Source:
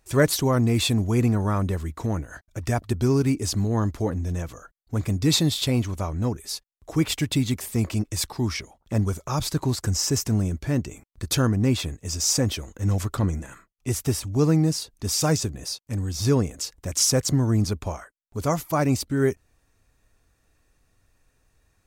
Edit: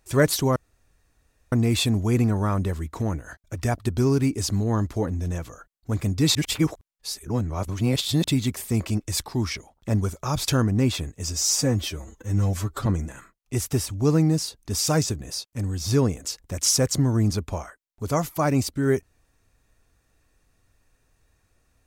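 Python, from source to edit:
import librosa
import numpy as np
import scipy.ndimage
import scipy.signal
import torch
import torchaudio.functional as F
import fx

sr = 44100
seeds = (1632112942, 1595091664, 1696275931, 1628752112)

y = fx.edit(x, sr, fx.insert_room_tone(at_s=0.56, length_s=0.96),
    fx.reverse_span(start_s=5.39, length_s=1.89),
    fx.cut(start_s=9.52, length_s=1.81),
    fx.stretch_span(start_s=12.18, length_s=1.02, factor=1.5), tone=tone)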